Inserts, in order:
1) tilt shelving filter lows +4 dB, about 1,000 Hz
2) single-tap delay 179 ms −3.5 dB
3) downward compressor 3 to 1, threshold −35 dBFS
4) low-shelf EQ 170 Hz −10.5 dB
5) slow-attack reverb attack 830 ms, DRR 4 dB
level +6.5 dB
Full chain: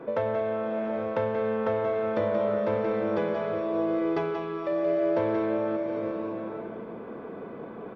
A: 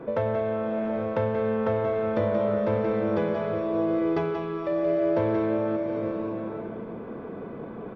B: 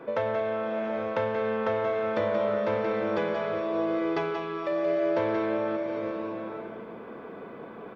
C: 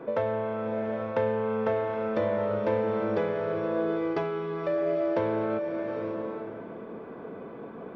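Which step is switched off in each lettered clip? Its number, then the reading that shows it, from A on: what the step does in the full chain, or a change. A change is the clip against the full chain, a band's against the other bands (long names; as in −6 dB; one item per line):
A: 4, 125 Hz band +6.0 dB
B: 1, change in momentary loudness spread +2 LU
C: 2, change in crest factor +2.0 dB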